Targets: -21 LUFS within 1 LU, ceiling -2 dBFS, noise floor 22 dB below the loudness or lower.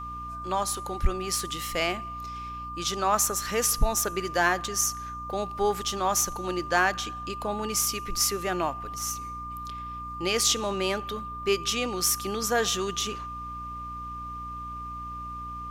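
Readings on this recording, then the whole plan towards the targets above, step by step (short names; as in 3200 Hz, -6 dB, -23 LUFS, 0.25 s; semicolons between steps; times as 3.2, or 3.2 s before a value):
hum 60 Hz; harmonics up to 300 Hz; hum level -40 dBFS; steady tone 1200 Hz; tone level -35 dBFS; loudness -28.0 LUFS; peak -9.5 dBFS; loudness target -21.0 LUFS
-> notches 60/120/180/240/300 Hz; notch 1200 Hz, Q 30; gain +7 dB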